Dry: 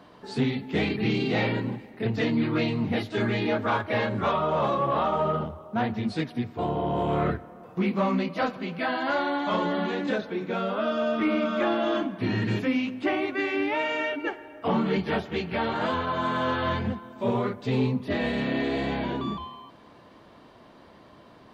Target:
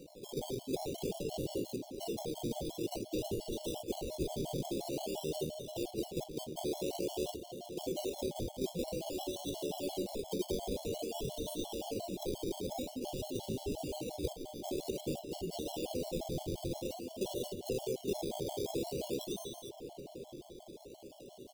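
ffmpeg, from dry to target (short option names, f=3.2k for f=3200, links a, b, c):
-filter_complex "[0:a]afftfilt=real='re*lt(hypot(re,im),0.251)':imag='im*lt(hypot(re,im),0.251)':win_size=1024:overlap=0.75,equalizer=f=140:w=0.32:g=-7,acompressor=threshold=-36dB:ratio=16,highpass=110,equalizer=f=110:t=q:w=4:g=-8,equalizer=f=220:t=q:w=4:g=-5,equalizer=f=370:t=q:w=4:g=6,equalizer=f=860:t=q:w=4:g=-10,equalizer=f=1.8k:t=q:w=4:g=-9,lowpass=f=2.9k:w=0.5412,lowpass=f=2.9k:w=1.3066,acrusher=samples=25:mix=1:aa=0.000001:lfo=1:lforange=15:lforate=0.5,asuperstop=centerf=1500:order=8:qfactor=0.7,asplit=2[a][b];[b]adelay=1085,lowpass=f=2k:p=1,volume=-11.5dB,asplit=2[c][d];[d]adelay=1085,lowpass=f=2k:p=1,volume=0.31,asplit=2[e][f];[f]adelay=1085,lowpass=f=2k:p=1,volume=0.31[g];[c][e][g]amix=inputs=3:normalize=0[h];[a][h]amix=inputs=2:normalize=0,afftfilt=real='re*gt(sin(2*PI*5.7*pts/sr)*(1-2*mod(floor(b*sr/1024/570),2)),0)':imag='im*gt(sin(2*PI*5.7*pts/sr)*(1-2*mod(floor(b*sr/1024/570),2)),0)':win_size=1024:overlap=0.75,volume=7.5dB"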